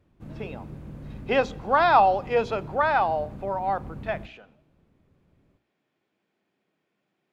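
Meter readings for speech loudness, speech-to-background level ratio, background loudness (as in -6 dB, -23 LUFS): -24.0 LUFS, 17.5 dB, -41.5 LUFS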